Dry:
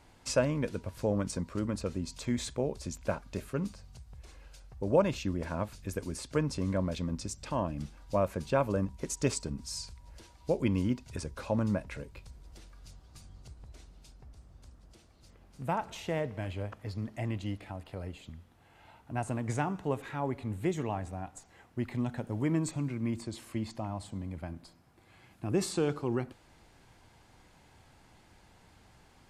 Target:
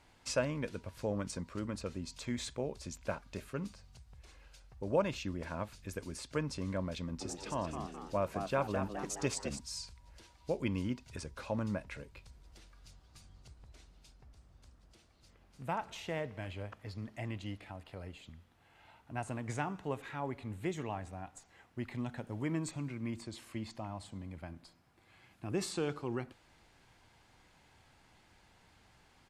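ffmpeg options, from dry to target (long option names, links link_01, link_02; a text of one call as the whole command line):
ffmpeg -i in.wav -filter_complex "[0:a]equalizer=frequency=2600:width=0.41:gain=5,asplit=3[link_01][link_02][link_03];[link_01]afade=type=out:start_time=7.2:duration=0.02[link_04];[link_02]asplit=7[link_05][link_06][link_07][link_08][link_09][link_10][link_11];[link_06]adelay=210,afreqshift=100,volume=-7dB[link_12];[link_07]adelay=420,afreqshift=200,volume=-13.4dB[link_13];[link_08]adelay=630,afreqshift=300,volume=-19.8dB[link_14];[link_09]adelay=840,afreqshift=400,volume=-26.1dB[link_15];[link_10]adelay=1050,afreqshift=500,volume=-32.5dB[link_16];[link_11]adelay=1260,afreqshift=600,volume=-38.9dB[link_17];[link_05][link_12][link_13][link_14][link_15][link_16][link_17]amix=inputs=7:normalize=0,afade=type=in:start_time=7.2:duration=0.02,afade=type=out:start_time=9.58:duration=0.02[link_18];[link_03]afade=type=in:start_time=9.58:duration=0.02[link_19];[link_04][link_18][link_19]amix=inputs=3:normalize=0,volume=-6.5dB" out.wav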